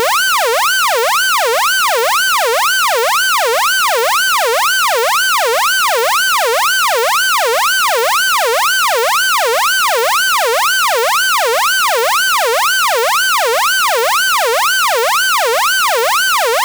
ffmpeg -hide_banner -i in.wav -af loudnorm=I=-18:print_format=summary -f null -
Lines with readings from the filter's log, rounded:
Input Integrated:    -11.4 LUFS
Input True Peak:      -5.5 dBTP
Input LRA:             0.1 LU
Input Threshold:     -21.4 LUFS